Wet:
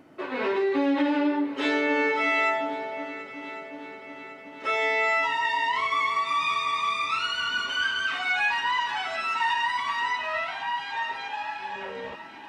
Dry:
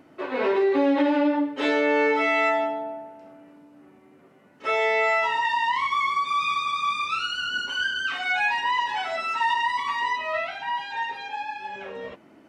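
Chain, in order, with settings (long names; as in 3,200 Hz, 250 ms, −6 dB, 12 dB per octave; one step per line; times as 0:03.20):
dynamic equaliser 560 Hz, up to −6 dB, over −35 dBFS, Q 1
echo machine with several playback heads 367 ms, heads second and third, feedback 62%, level −17 dB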